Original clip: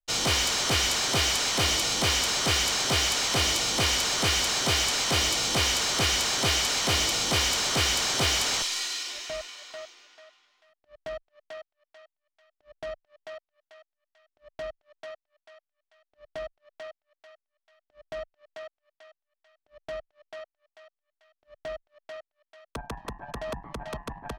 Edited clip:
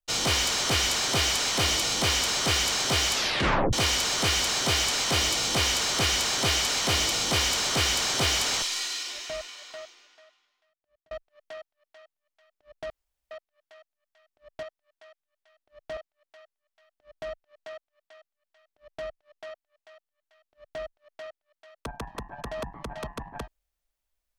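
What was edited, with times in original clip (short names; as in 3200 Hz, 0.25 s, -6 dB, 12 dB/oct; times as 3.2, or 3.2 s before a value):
3.13 tape stop 0.60 s
9.69–11.11 fade out
12.9–13.31 room tone
14.63–15.09 cut
16.43–16.87 cut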